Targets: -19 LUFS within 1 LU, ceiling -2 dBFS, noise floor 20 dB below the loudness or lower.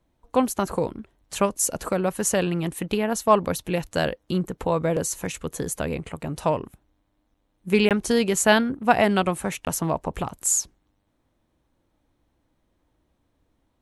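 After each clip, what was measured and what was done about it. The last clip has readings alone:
dropouts 2; longest dropout 18 ms; loudness -24.0 LUFS; peak level -4.0 dBFS; loudness target -19.0 LUFS
-> interpolate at 7.89/9.65 s, 18 ms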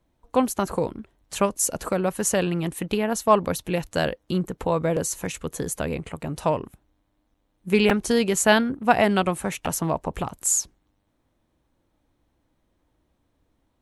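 dropouts 0; loudness -24.0 LUFS; peak level -4.0 dBFS; loudness target -19.0 LUFS
-> trim +5 dB; peak limiter -2 dBFS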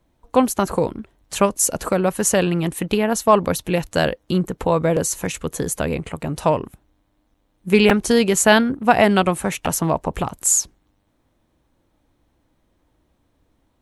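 loudness -19.0 LUFS; peak level -2.0 dBFS; noise floor -66 dBFS

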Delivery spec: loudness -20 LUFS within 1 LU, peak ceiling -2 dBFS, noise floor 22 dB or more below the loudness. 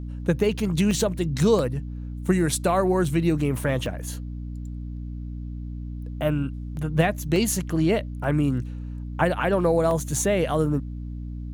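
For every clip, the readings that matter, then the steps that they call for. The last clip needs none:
dropouts 8; longest dropout 1.3 ms; hum 60 Hz; highest harmonic 300 Hz; hum level -30 dBFS; loudness -24.0 LUFS; peak level -8.0 dBFS; loudness target -20.0 LUFS
-> interpolate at 0.91/1.59/3.05/3.86/6.77/7.36/8.24/9.91 s, 1.3 ms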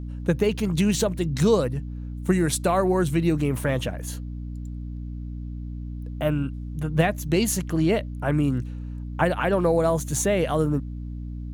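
dropouts 0; hum 60 Hz; highest harmonic 300 Hz; hum level -30 dBFS
-> de-hum 60 Hz, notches 5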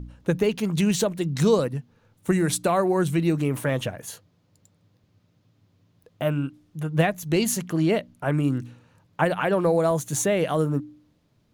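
hum not found; loudness -24.0 LUFS; peak level -8.5 dBFS; loudness target -20.0 LUFS
-> trim +4 dB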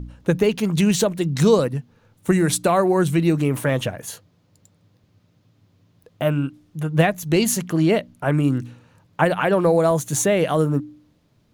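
loudness -20.0 LUFS; peak level -4.5 dBFS; noise floor -62 dBFS

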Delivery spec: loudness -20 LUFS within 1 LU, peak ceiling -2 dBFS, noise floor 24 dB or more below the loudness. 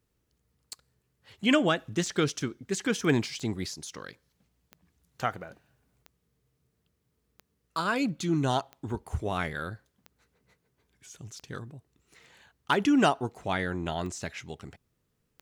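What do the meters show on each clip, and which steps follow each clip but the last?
clicks found 12; loudness -29.5 LUFS; peak level -10.0 dBFS; loudness target -20.0 LUFS
-> de-click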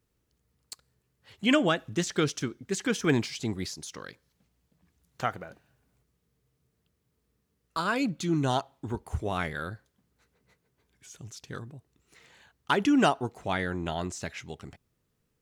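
clicks found 0; loudness -29.5 LUFS; peak level -10.0 dBFS; loudness target -20.0 LUFS
-> trim +9.5 dB; peak limiter -2 dBFS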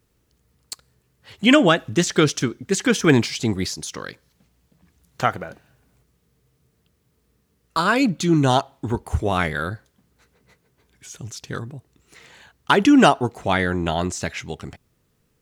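loudness -20.0 LUFS; peak level -2.0 dBFS; noise floor -67 dBFS

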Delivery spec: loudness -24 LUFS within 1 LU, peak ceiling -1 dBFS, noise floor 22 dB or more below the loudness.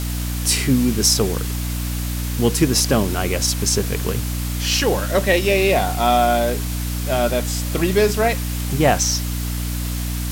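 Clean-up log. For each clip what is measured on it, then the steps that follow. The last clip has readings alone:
hum 60 Hz; highest harmonic 300 Hz; hum level -22 dBFS; noise floor -24 dBFS; noise floor target -42 dBFS; loudness -19.5 LUFS; peak level -2.0 dBFS; loudness target -24.0 LUFS
-> hum notches 60/120/180/240/300 Hz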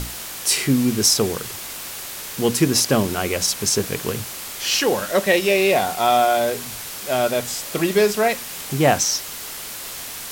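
hum not found; noise floor -33 dBFS; noise floor target -43 dBFS
-> noise reduction 10 dB, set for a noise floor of -33 dBFS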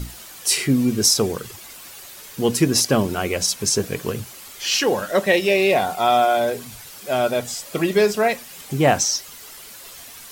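noise floor -40 dBFS; noise floor target -42 dBFS
-> noise reduction 6 dB, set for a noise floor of -40 dBFS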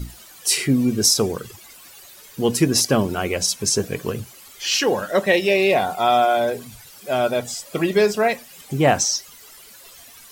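noise floor -45 dBFS; loudness -20.0 LUFS; peak level -2.5 dBFS; loudness target -24.0 LUFS
-> trim -4 dB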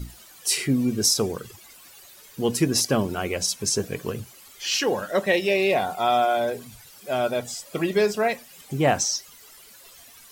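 loudness -24.0 LUFS; peak level -6.5 dBFS; noise floor -49 dBFS

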